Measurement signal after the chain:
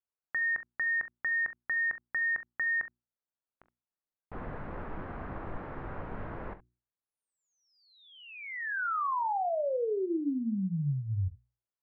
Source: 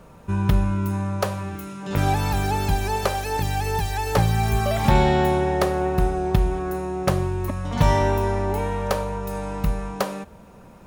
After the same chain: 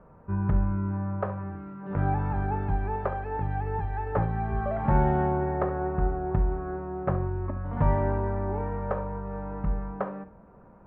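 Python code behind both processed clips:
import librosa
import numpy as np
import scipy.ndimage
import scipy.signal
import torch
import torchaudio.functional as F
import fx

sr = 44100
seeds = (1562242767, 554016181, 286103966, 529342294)

p1 = scipy.signal.sosfilt(scipy.signal.butter(4, 1600.0, 'lowpass', fs=sr, output='sos'), x)
p2 = fx.hum_notches(p1, sr, base_hz=60, count=6)
p3 = p2 + fx.room_early_taps(p2, sr, ms=(21, 42, 68), db=(-16.0, -16.0, -15.5), dry=0)
y = F.gain(torch.from_numpy(p3), -6.0).numpy()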